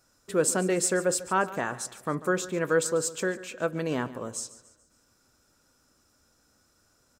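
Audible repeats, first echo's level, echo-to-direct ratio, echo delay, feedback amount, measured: 3, -17.0 dB, -16.0 dB, 0.143 s, 45%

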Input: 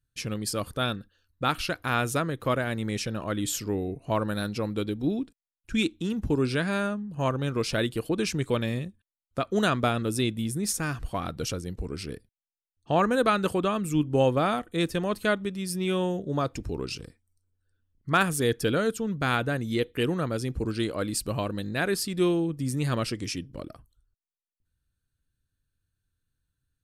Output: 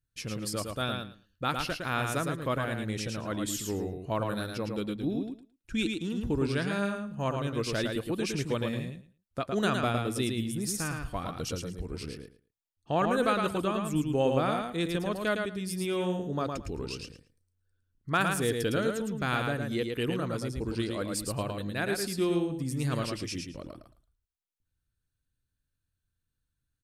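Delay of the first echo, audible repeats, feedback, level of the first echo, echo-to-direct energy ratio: 0.11 s, 2, 17%, -4.5 dB, -4.5 dB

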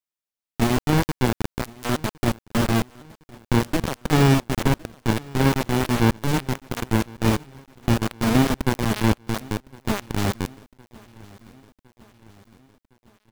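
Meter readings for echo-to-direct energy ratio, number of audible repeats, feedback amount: -22.0 dB, 3, 56%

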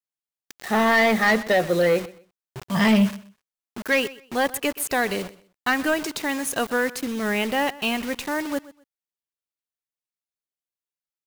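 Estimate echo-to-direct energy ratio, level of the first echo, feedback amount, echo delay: -19.0 dB, -19.0 dB, 23%, 0.126 s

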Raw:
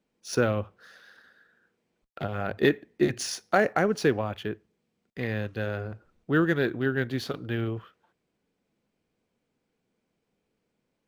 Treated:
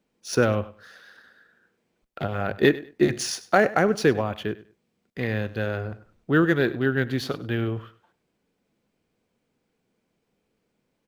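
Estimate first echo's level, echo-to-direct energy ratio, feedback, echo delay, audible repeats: -18.0 dB, -18.0 dB, 22%, 99 ms, 2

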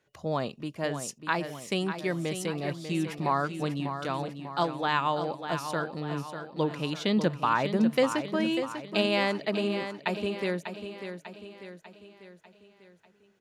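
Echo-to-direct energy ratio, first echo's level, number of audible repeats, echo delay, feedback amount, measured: -7.5 dB, -9.0 dB, 5, 0.595 s, 51%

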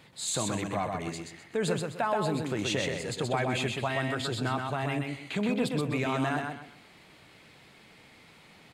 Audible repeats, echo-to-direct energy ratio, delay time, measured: 3, -3.5 dB, 0.127 s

